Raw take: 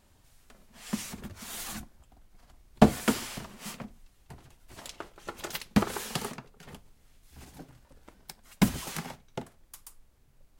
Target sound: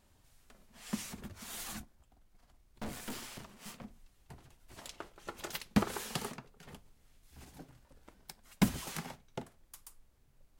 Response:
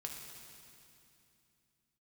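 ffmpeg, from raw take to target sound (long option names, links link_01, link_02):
-filter_complex "[0:a]asettb=1/sr,asplit=3[link_01][link_02][link_03];[link_01]atrim=end=1.824[link_04];[link_02]atrim=start=1.82:end=3.83,asetpts=PTS-STARTPTS,afade=type=in:duration=0.004:curve=qsin,afade=type=out:start_time=2.006:duration=0.004:curve=qsin,aeval=exprs='(tanh(50.1*val(0)+0.65)-tanh(0.65))/50.1':channel_layout=same[link_05];[link_03]atrim=start=3.826[link_06];[link_04][link_05]acrossfade=duration=0.004:curve1=hsin:curve2=qsin[link_07];[link_07][link_06]acrossfade=duration=0.004:curve1=qsin:curve2=hsin,volume=-4.5dB"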